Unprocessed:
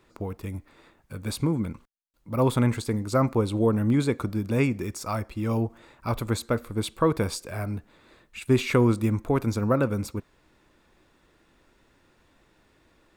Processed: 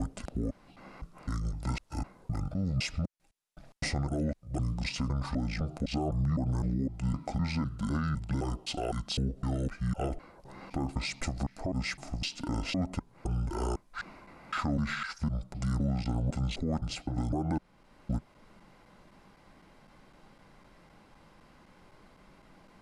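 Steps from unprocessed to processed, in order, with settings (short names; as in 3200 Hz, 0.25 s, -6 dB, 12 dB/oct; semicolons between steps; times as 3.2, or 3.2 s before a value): slices in reverse order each 0.147 s, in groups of 3; bell 150 Hz -4 dB 1.4 oct; compressor 2:1, threshold -36 dBFS, peak gain reduction 10.5 dB; limiter -28.5 dBFS, peak gain reduction 10 dB; speed mistake 78 rpm record played at 45 rpm; gain +5.5 dB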